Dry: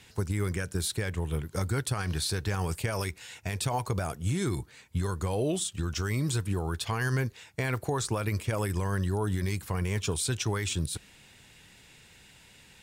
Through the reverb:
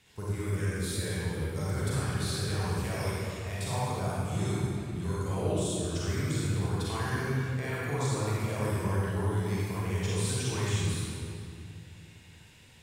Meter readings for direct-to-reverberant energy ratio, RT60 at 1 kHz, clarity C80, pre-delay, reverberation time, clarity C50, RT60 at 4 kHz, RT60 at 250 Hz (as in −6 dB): −8.0 dB, 2.4 s, −2.5 dB, 34 ms, 2.6 s, −5.5 dB, 1.8 s, 3.2 s